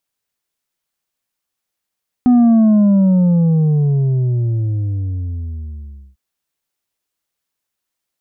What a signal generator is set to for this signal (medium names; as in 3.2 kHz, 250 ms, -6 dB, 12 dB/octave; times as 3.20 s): sub drop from 250 Hz, over 3.90 s, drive 4.5 dB, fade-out 3.87 s, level -7.5 dB